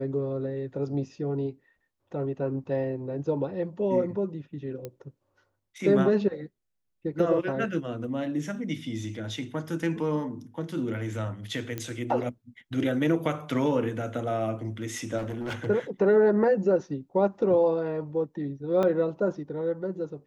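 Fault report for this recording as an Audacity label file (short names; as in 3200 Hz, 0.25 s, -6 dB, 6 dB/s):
4.850000	4.850000	pop -22 dBFS
11.780000	11.780000	pop -18 dBFS
15.170000	15.670000	clipped -29 dBFS
18.830000	18.830000	gap 2.1 ms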